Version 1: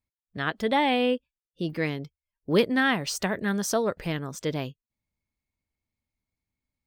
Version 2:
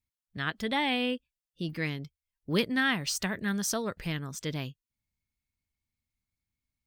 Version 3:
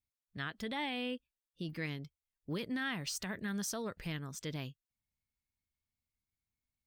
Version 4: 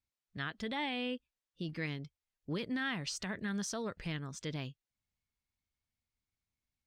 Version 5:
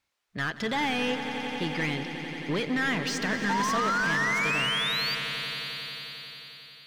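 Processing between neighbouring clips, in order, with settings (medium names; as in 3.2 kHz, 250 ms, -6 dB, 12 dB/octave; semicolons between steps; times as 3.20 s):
peaking EQ 560 Hz -9.5 dB 2.2 oct
peak limiter -23 dBFS, peak gain reduction 10.5 dB; trim -5.5 dB
low-pass 7.1 kHz 12 dB/octave; trim +1 dB
painted sound rise, 3.49–5.15 s, 880–4800 Hz -39 dBFS; overdrive pedal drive 19 dB, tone 2.7 kHz, clips at -26 dBFS; echo with a slow build-up 89 ms, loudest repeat 5, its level -13 dB; trim +5.5 dB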